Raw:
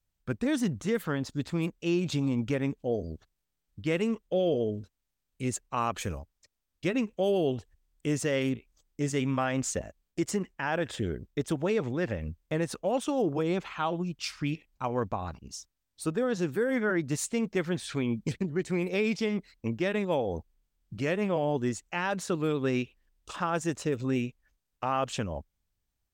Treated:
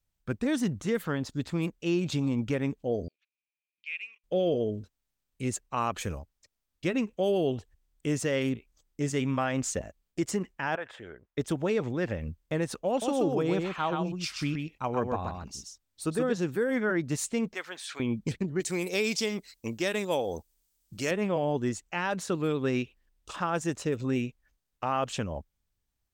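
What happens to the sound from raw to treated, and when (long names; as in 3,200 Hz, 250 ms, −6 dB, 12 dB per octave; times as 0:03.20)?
0:03.08–0:04.24: four-pole ladder band-pass 2,500 Hz, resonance 90%
0:10.75–0:11.38: three-way crossover with the lows and the highs turned down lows −19 dB, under 580 Hz, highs −17 dB, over 2,500 Hz
0:12.89–0:16.33: single-tap delay 128 ms −4.5 dB
0:17.54–0:18.00: high-pass filter 830 Hz
0:18.60–0:21.11: bass and treble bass −6 dB, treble +15 dB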